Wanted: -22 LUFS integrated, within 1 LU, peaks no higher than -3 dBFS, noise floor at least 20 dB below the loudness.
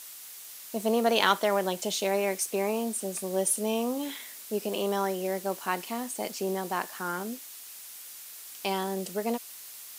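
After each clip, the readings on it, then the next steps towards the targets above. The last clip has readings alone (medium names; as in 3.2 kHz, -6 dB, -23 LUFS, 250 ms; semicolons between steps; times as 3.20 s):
noise floor -45 dBFS; noise floor target -50 dBFS; loudness -29.5 LUFS; peak level -7.0 dBFS; loudness target -22.0 LUFS
-> noise reduction 6 dB, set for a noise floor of -45 dBFS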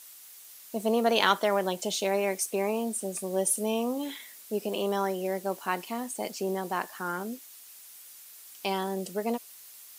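noise floor -50 dBFS; loudness -30.0 LUFS; peak level -7.0 dBFS; loudness target -22.0 LUFS
-> trim +8 dB; peak limiter -3 dBFS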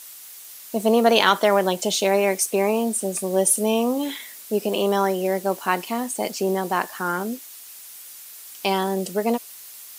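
loudness -22.0 LUFS; peak level -3.0 dBFS; noise floor -42 dBFS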